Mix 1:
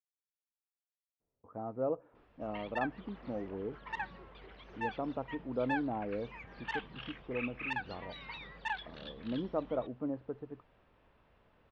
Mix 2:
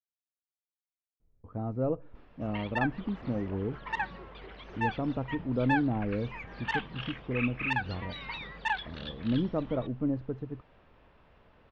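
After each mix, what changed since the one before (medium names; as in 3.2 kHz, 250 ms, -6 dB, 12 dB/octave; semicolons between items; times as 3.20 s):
speech: remove band-pass filter 820 Hz, Q 0.8; background +6.5 dB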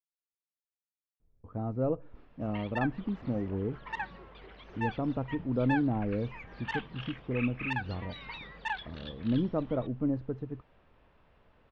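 background -4.0 dB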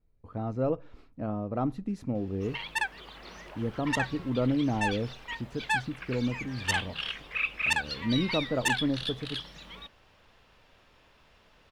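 speech: entry -1.20 s; master: remove tape spacing loss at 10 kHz 39 dB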